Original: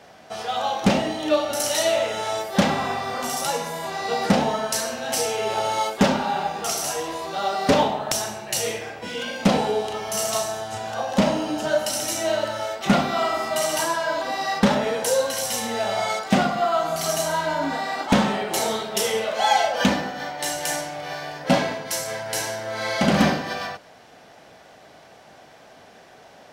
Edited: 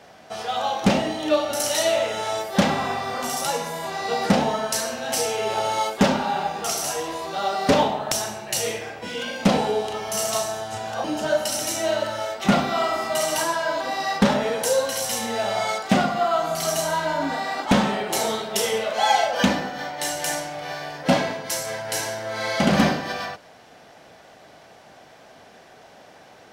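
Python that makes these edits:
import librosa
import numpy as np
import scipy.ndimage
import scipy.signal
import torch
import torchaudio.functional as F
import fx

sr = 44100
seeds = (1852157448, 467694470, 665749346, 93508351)

y = fx.edit(x, sr, fx.cut(start_s=11.04, length_s=0.41), tone=tone)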